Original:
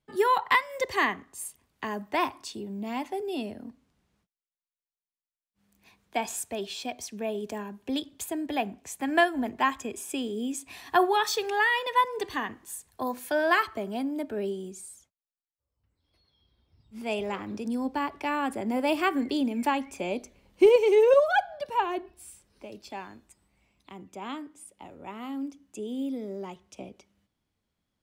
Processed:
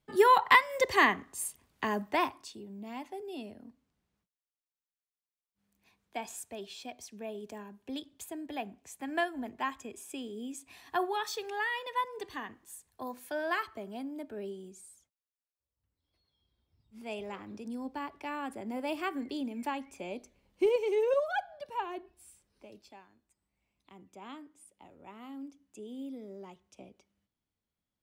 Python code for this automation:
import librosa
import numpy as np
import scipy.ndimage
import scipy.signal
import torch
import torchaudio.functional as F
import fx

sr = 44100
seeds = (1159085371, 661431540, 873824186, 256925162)

y = fx.gain(x, sr, db=fx.line((1.98, 1.5), (2.58, -9.0), (22.79, -9.0), (23.08, -19.0), (23.95, -9.5)))